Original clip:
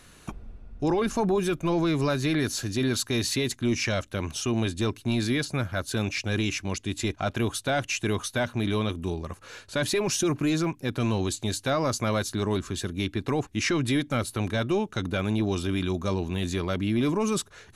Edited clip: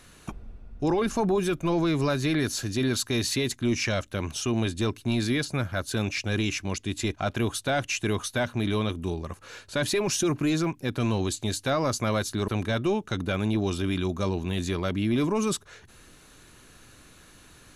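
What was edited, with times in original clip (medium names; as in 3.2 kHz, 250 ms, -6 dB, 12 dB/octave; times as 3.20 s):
12.48–14.33 s: delete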